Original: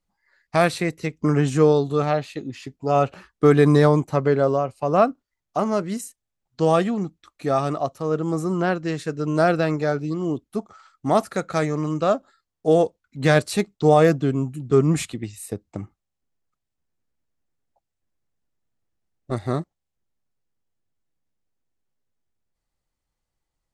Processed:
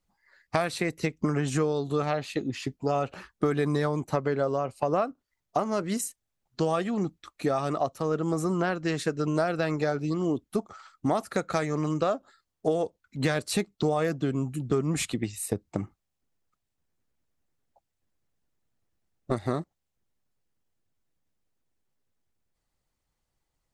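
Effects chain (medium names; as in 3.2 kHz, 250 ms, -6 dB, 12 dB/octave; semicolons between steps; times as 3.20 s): harmonic-percussive split harmonic -5 dB; compression 6:1, threshold -27 dBFS, peak gain reduction 13.5 dB; trim +4 dB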